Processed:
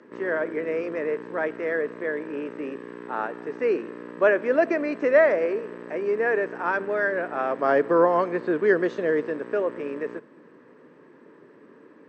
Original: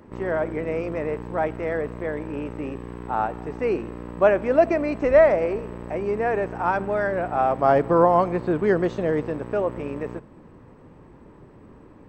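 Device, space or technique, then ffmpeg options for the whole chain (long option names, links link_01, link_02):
television speaker: -af "highpass=frequency=200:width=0.5412,highpass=frequency=200:width=1.3066,equalizer=frequency=200:width_type=q:width=4:gain=-5,equalizer=frequency=440:width_type=q:width=4:gain=4,equalizer=frequency=780:width_type=q:width=4:gain=-9,equalizer=frequency=1700:width_type=q:width=4:gain=8,lowpass=frequency=7000:width=0.5412,lowpass=frequency=7000:width=1.3066,volume=-1.5dB"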